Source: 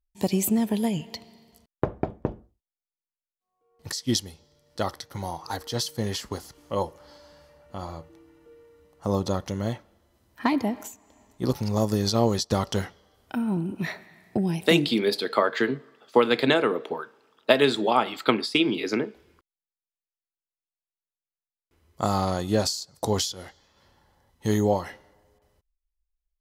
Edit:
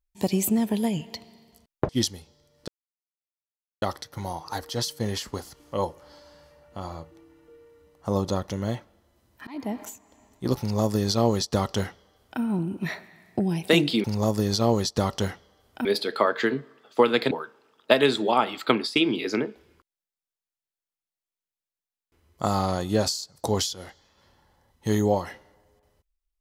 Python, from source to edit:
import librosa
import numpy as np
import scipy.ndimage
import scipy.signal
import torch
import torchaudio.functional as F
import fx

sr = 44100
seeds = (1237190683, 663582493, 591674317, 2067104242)

y = fx.edit(x, sr, fx.cut(start_s=1.89, length_s=2.12),
    fx.insert_silence(at_s=4.8, length_s=1.14),
    fx.fade_in_span(start_s=10.45, length_s=0.35),
    fx.duplicate(start_s=11.58, length_s=1.81, to_s=15.02),
    fx.cut(start_s=16.48, length_s=0.42), tone=tone)